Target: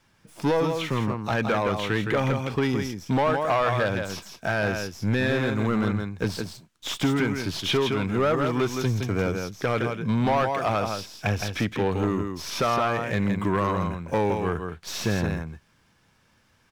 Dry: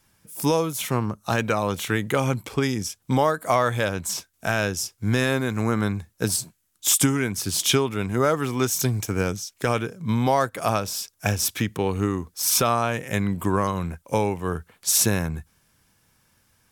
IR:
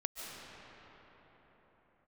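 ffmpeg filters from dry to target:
-filter_complex "[0:a]lowpass=7000,lowshelf=frequency=82:gain=-6,aecho=1:1:165:0.398,asoftclip=type=tanh:threshold=-19dB,acrossover=split=5000[link_01][link_02];[link_02]acompressor=threshold=-48dB:ratio=4:attack=1:release=60[link_03];[link_01][link_03]amix=inputs=2:normalize=0,acrossover=split=4600[link_04][link_05];[link_05]aeval=exprs='max(val(0),0)':channel_layout=same[link_06];[link_04][link_06]amix=inputs=2:normalize=0,volume=2.5dB"

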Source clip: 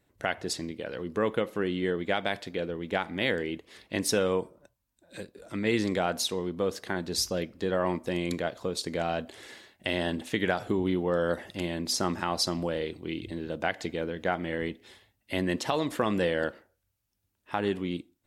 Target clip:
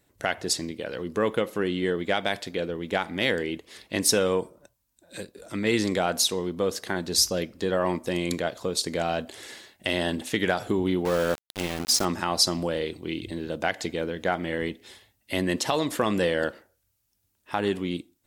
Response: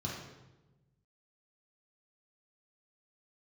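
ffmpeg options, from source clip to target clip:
-filter_complex "[0:a]acontrast=81,bass=frequency=250:gain=-1,treble=frequency=4000:gain=6,asettb=1/sr,asplit=3[link_01][link_02][link_03];[link_01]atrim=end=11.054[link_04];[link_02]atrim=start=11.05:end=12.05,asetpts=PTS-STARTPTS,afade=type=in:duration=0.004:curve=qsin,afade=type=out:start_time=0.996:duration=0.004:curve=qsin,aeval=exprs='val(0)*gte(abs(val(0)),0.0596)':channel_layout=same[link_05];[link_03]atrim=start=12.046[link_06];[link_04][link_05]acrossfade=duration=0.004:curve1=hsin:curve2=qsin[link_07];[link_07][link_06]acrossfade=duration=0.004:curve1=qsin:curve2=hsin,volume=-4dB"

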